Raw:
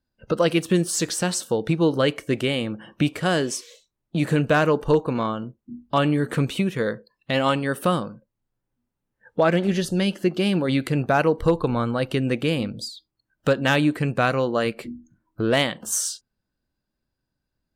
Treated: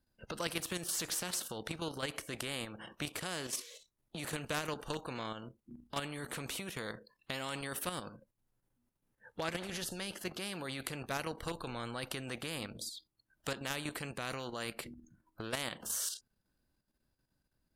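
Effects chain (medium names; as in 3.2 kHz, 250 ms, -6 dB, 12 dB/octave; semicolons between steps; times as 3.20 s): peaking EQ 11 kHz +7.5 dB 0.39 oct; level held to a coarse grid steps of 9 dB; spectrum-flattening compressor 2:1; trim -6.5 dB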